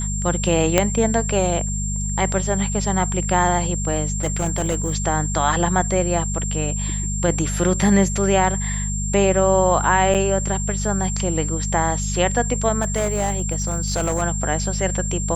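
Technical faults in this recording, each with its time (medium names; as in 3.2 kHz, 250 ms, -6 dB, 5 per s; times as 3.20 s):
hum 50 Hz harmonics 4 -25 dBFS
whine 7.4 kHz -27 dBFS
0.78 s: pop 0 dBFS
4.23–4.94 s: clipped -16 dBFS
10.14–10.15 s: dropout 7.2 ms
12.81–14.23 s: clipped -16 dBFS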